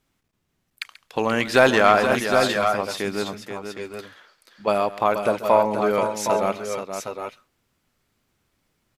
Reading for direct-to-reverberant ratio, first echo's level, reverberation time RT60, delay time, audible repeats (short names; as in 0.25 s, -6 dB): none, -16.5 dB, none, 0.136 s, 3